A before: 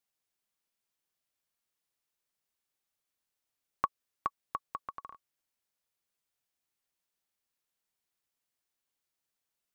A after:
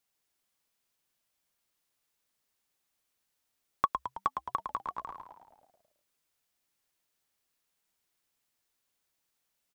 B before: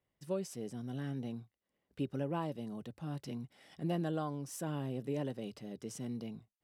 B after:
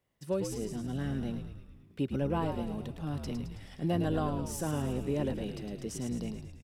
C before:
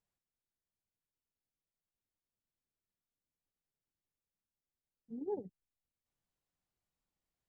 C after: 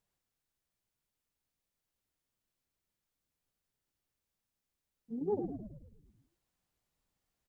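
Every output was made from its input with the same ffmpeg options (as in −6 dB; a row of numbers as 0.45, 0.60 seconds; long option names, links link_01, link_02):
-filter_complex "[0:a]asplit=2[link_01][link_02];[link_02]asoftclip=type=tanh:threshold=-27dB,volume=-6.5dB[link_03];[link_01][link_03]amix=inputs=2:normalize=0,asplit=9[link_04][link_05][link_06][link_07][link_08][link_09][link_10][link_11][link_12];[link_05]adelay=108,afreqshift=-66,volume=-7dB[link_13];[link_06]adelay=216,afreqshift=-132,volume=-11.6dB[link_14];[link_07]adelay=324,afreqshift=-198,volume=-16.2dB[link_15];[link_08]adelay=432,afreqshift=-264,volume=-20.7dB[link_16];[link_09]adelay=540,afreqshift=-330,volume=-25.3dB[link_17];[link_10]adelay=648,afreqshift=-396,volume=-29.9dB[link_18];[link_11]adelay=756,afreqshift=-462,volume=-34.5dB[link_19];[link_12]adelay=864,afreqshift=-528,volume=-39.1dB[link_20];[link_04][link_13][link_14][link_15][link_16][link_17][link_18][link_19][link_20]amix=inputs=9:normalize=0,volume=1.5dB"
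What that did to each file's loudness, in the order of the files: +4.5, +5.5, +4.5 LU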